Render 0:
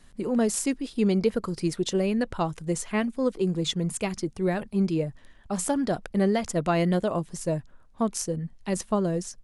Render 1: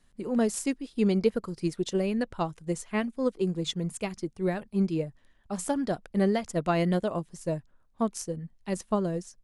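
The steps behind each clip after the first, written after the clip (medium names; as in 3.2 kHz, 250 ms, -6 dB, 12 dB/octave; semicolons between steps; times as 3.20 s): upward expansion 1.5:1, over -39 dBFS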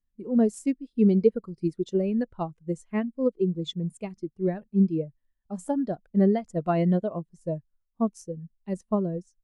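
spectral contrast expander 1.5:1; trim +3.5 dB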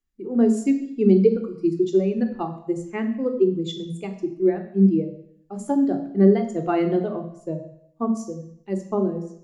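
reverberation RT60 0.70 s, pre-delay 3 ms, DRR 6 dB; trim -1 dB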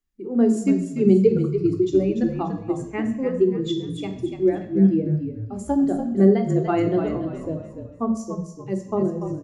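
frequency-shifting echo 290 ms, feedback 36%, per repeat -42 Hz, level -8 dB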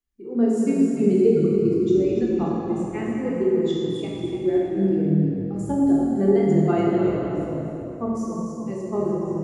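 plate-style reverb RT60 2.8 s, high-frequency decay 0.75×, DRR -3.5 dB; trim -5.5 dB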